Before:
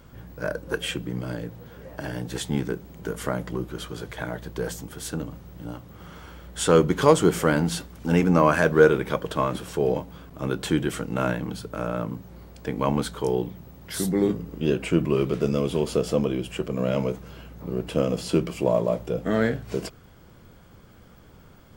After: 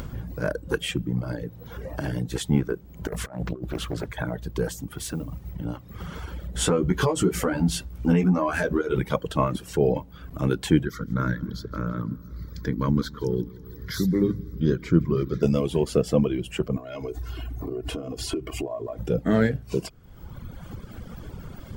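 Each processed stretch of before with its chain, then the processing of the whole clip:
0:03.07–0:04.09: compressor whose output falls as the input rises −32 dBFS, ratio −0.5 + highs frequency-modulated by the lows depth 0.83 ms
0:04.97–0:05.52: downward compressor 2 to 1, threshold −33 dBFS + noise that follows the level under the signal 18 dB
0:06.53–0:09.01: downward compressor 10 to 1, threshold −20 dBFS + double-tracking delay 16 ms −3 dB
0:10.85–0:15.43: phaser with its sweep stopped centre 2,700 Hz, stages 6 + repeating echo 165 ms, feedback 52%, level −13 dB
0:16.76–0:18.99: downward compressor, threshold −31 dBFS + comb filter 2.8 ms, depth 96%
whole clip: reverb reduction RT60 1.4 s; low-shelf EQ 260 Hz +8.5 dB; upward compression, threshold −27 dBFS

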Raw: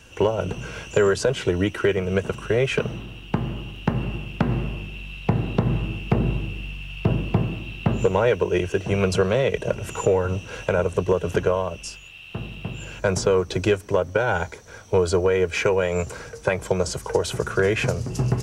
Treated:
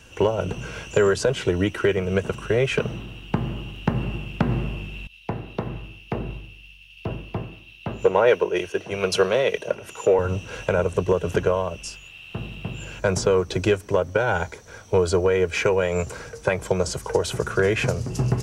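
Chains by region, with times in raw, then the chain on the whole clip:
0:05.07–0:10.19: bass and treble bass −10 dB, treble −1 dB + notch filter 7,600 Hz, Q 5.3 + multiband upward and downward expander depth 100%
whole clip: no processing

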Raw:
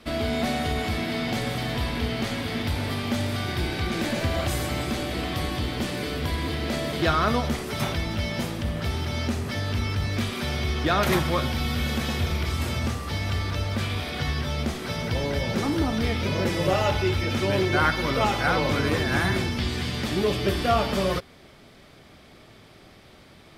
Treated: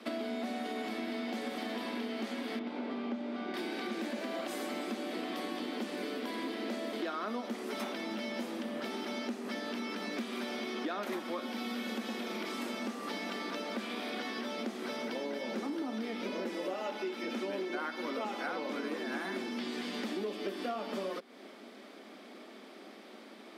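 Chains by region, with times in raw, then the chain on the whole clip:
0:02.59–0:03.54: head-to-tape spacing loss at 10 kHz 25 dB + notch filter 1,800 Hz, Q 13
whole clip: Butterworth high-pass 210 Hz 72 dB per octave; spectral tilt −1.5 dB per octave; downward compressor 6 to 1, threshold −35 dBFS

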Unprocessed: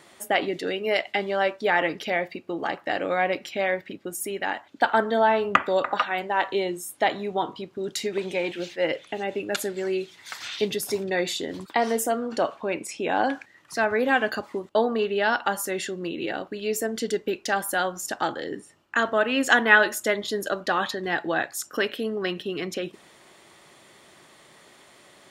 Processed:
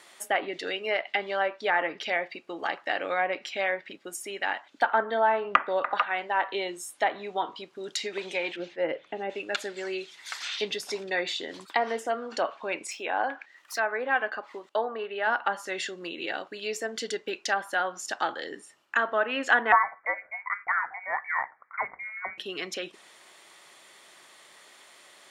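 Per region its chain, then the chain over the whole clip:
0:08.56–0:09.30: low-pass filter 1,000 Hz 6 dB per octave + low-shelf EQ 460 Hz +6.5 dB
0:12.91–0:15.27: high-pass filter 410 Hz 6 dB per octave + bad sample-rate conversion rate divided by 2×, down none, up zero stuff
0:19.72–0:22.38: high-pass filter 860 Hz + tilt shelving filter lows +3 dB, about 1,400 Hz + voice inversion scrambler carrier 2,600 Hz
whole clip: high-pass filter 990 Hz 6 dB per octave; treble cut that deepens with the level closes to 1,700 Hz, closed at −22.5 dBFS; level +1.5 dB

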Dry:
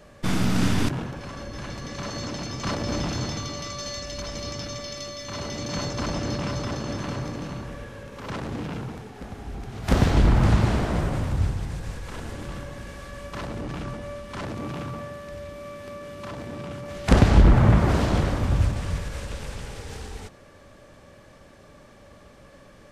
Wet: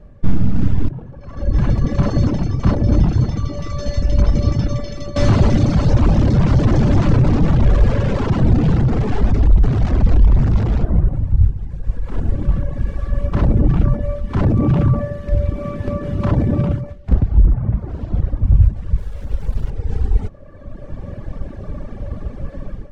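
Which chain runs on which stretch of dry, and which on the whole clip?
0:05.16–0:10.84: sign of each sample alone + low-pass filter 7,200 Hz 24 dB per octave
0:18.98–0:19.70: notch filter 2,600 Hz, Q 28 + bit-depth reduction 6 bits, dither none
whole clip: reverb reduction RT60 1.5 s; spectral tilt −4.5 dB per octave; automatic gain control gain up to 14 dB; level −1 dB

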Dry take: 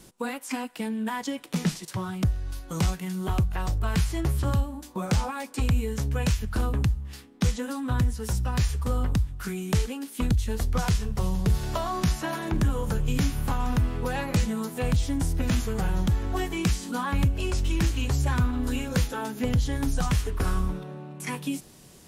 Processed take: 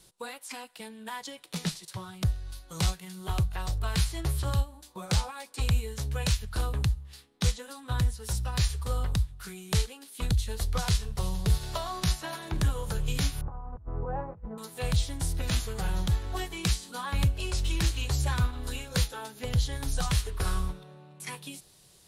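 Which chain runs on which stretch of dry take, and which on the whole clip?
0:13.41–0:14.58: low-pass filter 1,100 Hz 24 dB per octave + compressor whose output falls as the input rises −28 dBFS, ratio −0.5
whole clip: graphic EQ with 15 bands 250 Hz −11 dB, 4,000 Hz +8 dB, 10,000 Hz +6 dB; expander for the loud parts 1.5 to 1, over −36 dBFS

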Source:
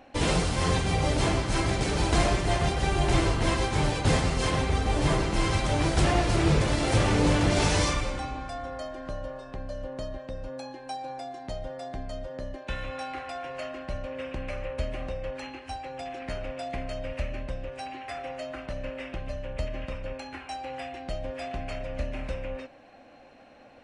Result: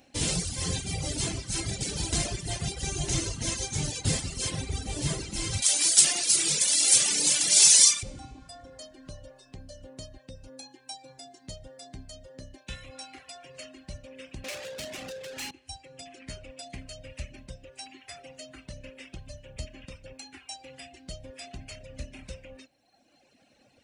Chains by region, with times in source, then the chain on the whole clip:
0:02.84–0:04.01: parametric band 6,300 Hz +7 dB 0.21 octaves + background noise brown −64 dBFS
0:05.62–0:08.03: high-pass filter 140 Hz 24 dB per octave + spectral tilt +4.5 dB per octave
0:14.44–0:15.51: high-pass filter 130 Hz + mid-hump overdrive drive 30 dB, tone 2,600 Hz, clips at −23 dBFS
whole clip: high-pass filter 93 Hz 6 dB per octave; reverb reduction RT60 1.5 s; drawn EQ curve 130 Hz 0 dB, 1,100 Hz −13 dB, 7,300 Hz +9 dB

